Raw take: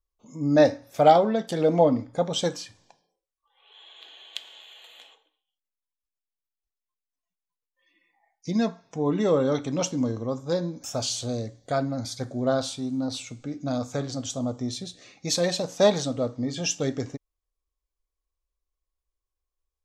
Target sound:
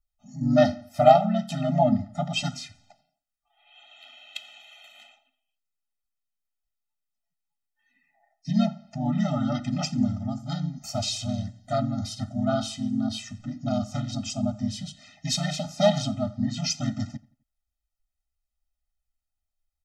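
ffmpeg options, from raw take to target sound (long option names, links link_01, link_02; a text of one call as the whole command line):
ffmpeg -i in.wav -filter_complex "[0:a]asplit=2[link_01][link_02];[link_02]asetrate=37084,aresample=44100,atempo=1.18921,volume=-1dB[link_03];[link_01][link_03]amix=inputs=2:normalize=0,asplit=2[link_04][link_05];[link_05]adelay=86,lowpass=frequency=4200:poles=1,volume=-21.5dB,asplit=2[link_06][link_07];[link_07]adelay=86,lowpass=frequency=4200:poles=1,volume=0.39,asplit=2[link_08][link_09];[link_09]adelay=86,lowpass=frequency=4200:poles=1,volume=0.39[link_10];[link_04][link_06][link_08][link_10]amix=inputs=4:normalize=0,afftfilt=real='re*eq(mod(floor(b*sr/1024/300),2),0)':imag='im*eq(mod(floor(b*sr/1024/300),2),0)':win_size=1024:overlap=0.75" out.wav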